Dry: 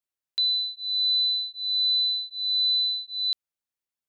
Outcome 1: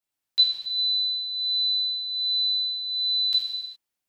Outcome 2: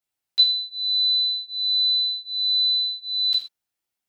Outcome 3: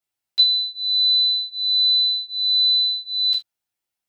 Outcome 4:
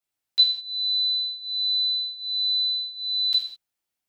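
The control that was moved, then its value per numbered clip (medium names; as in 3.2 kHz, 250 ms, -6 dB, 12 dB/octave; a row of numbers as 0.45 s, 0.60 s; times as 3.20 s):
gated-style reverb, gate: 440 ms, 160 ms, 100 ms, 240 ms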